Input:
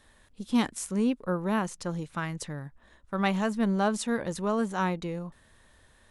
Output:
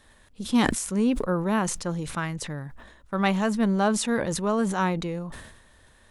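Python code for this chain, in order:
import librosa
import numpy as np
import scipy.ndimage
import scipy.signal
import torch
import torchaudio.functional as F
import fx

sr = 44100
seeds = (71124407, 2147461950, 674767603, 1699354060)

y = fx.sustainer(x, sr, db_per_s=58.0)
y = y * 10.0 ** (3.0 / 20.0)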